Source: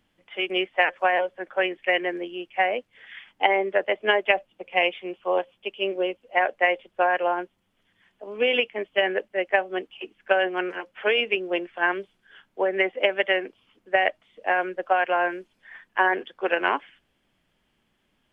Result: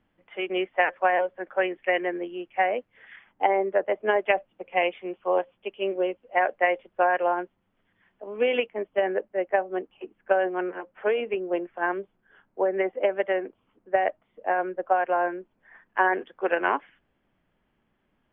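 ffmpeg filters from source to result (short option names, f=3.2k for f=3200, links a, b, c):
-af "asetnsamples=n=441:p=0,asendcmd='3.16 lowpass f 1300;4.16 lowpass f 1900;8.66 lowpass f 1200;15.86 lowpass f 1800',lowpass=1.9k"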